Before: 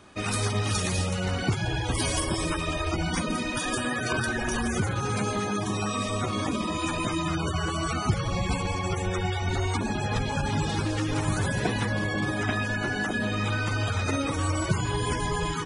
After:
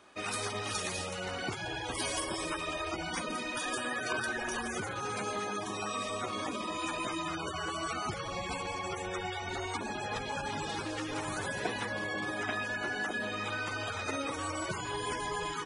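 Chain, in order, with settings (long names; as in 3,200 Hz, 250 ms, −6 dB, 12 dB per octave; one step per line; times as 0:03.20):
bass and treble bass −14 dB, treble −2 dB
level −4.5 dB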